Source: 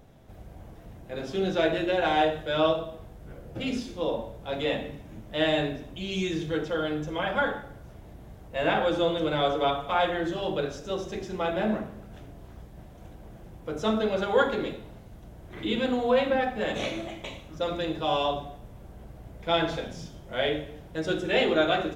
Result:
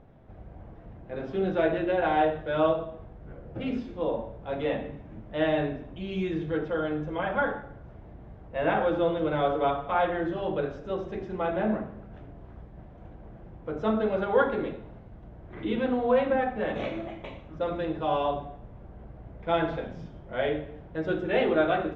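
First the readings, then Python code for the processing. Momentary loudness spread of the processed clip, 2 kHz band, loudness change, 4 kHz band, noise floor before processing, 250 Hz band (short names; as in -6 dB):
23 LU, -2.5 dB, -0.5 dB, -10.5 dB, -48 dBFS, 0.0 dB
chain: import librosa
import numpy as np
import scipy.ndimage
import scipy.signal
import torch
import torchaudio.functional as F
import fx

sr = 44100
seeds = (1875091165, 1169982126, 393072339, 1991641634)

y = scipy.signal.sosfilt(scipy.signal.butter(2, 1900.0, 'lowpass', fs=sr, output='sos'), x)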